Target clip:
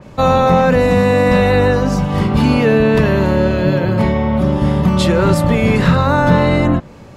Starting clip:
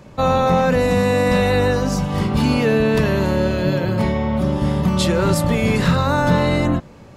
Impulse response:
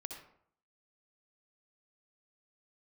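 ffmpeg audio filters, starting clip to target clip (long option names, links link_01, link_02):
-af "adynamicequalizer=threshold=0.01:dfrequency=3700:dqfactor=0.7:tfrequency=3700:tqfactor=0.7:attack=5:release=100:ratio=0.375:range=4:mode=cutabove:tftype=highshelf,volume=4.5dB"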